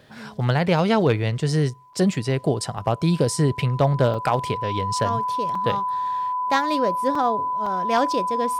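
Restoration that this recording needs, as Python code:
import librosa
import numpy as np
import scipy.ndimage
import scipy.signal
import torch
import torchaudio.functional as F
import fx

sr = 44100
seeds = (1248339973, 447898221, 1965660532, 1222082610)

y = fx.fix_declip(x, sr, threshold_db=-9.5)
y = fx.notch(y, sr, hz=1000.0, q=30.0)
y = fx.fix_interpolate(y, sr, at_s=(1.93, 2.78, 4.14, 5.55, 7.15, 7.66), length_ms=3.8)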